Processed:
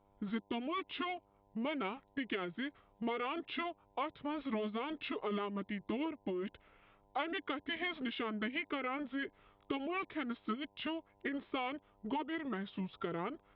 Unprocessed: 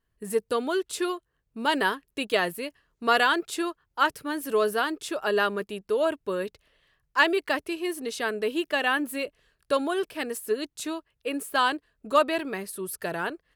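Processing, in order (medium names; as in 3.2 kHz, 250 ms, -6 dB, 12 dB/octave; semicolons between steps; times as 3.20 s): dynamic bell 1.1 kHz, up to -5 dB, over -36 dBFS, Q 1.1; compression 6:1, threshold -35 dBFS, peak gain reduction 16 dB; resampled via 11.025 kHz; formant shift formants -5 st; mains buzz 100 Hz, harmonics 10, -71 dBFS 0 dB/octave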